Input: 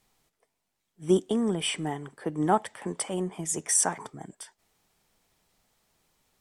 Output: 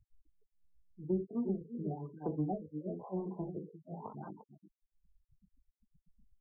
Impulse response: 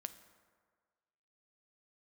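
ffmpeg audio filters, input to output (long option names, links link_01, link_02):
-filter_complex "[0:a]acompressor=mode=upward:threshold=-40dB:ratio=2.5,tremolo=f=7.9:d=0.89,flanger=delay=19:depth=2.2:speed=0.5,asplit=2[link_01][link_02];[link_02]aecho=0:1:41|64|65|350:0.422|0.126|0.251|0.266[link_03];[link_01][link_03]amix=inputs=2:normalize=0,acrossover=split=150[link_04][link_05];[link_05]acompressor=threshold=-36dB:ratio=8[link_06];[link_04][link_06]amix=inputs=2:normalize=0,afftfilt=real='re*gte(hypot(re,im),0.00501)':imag='im*gte(hypot(re,im),0.00501)':win_size=1024:overlap=0.75,afftfilt=real='re*lt(b*sr/1024,520*pow(1600/520,0.5+0.5*sin(2*PI*1*pts/sr)))':imag='im*lt(b*sr/1024,520*pow(1600/520,0.5+0.5*sin(2*PI*1*pts/sr)))':win_size=1024:overlap=0.75,volume=2.5dB"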